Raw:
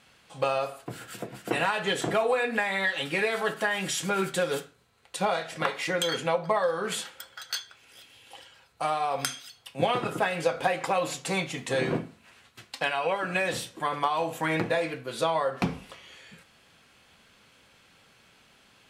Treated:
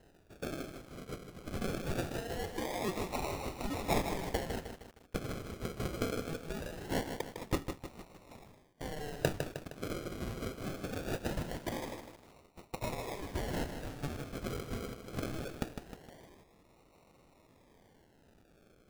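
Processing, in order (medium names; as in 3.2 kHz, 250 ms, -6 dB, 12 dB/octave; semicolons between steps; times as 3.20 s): differentiator; decimation with a swept rate 38×, swing 60% 0.22 Hz; bit-crushed delay 155 ms, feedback 55%, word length 9-bit, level -7 dB; trim +3 dB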